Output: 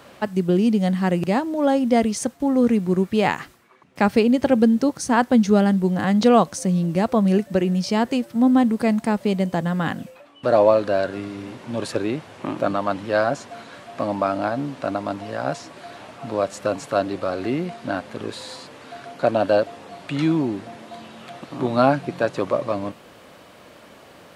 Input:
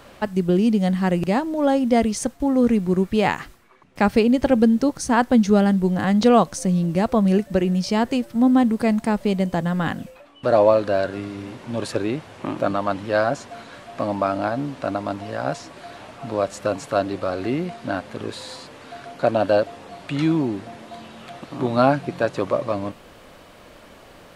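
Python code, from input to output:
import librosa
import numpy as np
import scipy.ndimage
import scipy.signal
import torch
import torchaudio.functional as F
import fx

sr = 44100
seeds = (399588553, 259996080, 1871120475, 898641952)

y = scipy.signal.sosfilt(scipy.signal.butter(2, 98.0, 'highpass', fs=sr, output='sos'), x)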